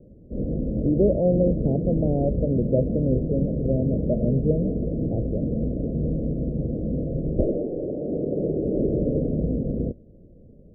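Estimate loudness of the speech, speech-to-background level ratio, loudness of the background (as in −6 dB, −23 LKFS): −25.5 LKFS, 1.0 dB, −26.5 LKFS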